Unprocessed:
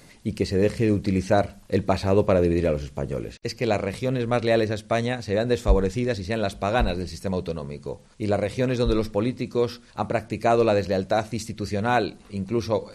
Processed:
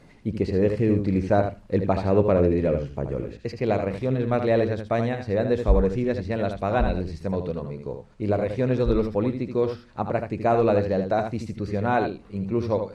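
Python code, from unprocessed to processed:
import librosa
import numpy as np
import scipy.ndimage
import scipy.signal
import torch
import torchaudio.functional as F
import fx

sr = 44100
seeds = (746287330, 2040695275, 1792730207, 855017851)

y = fx.lowpass(x, sr, hz=3500.0, slope=6)
y = fx.high_shelf(y, sr, hz=2400.0, db=-9.0)
y = y + 10.0 ** (-7.5 / 20.0) * np.pad(y, (int(78 * sr / 1000.0), 0))[:len(y)]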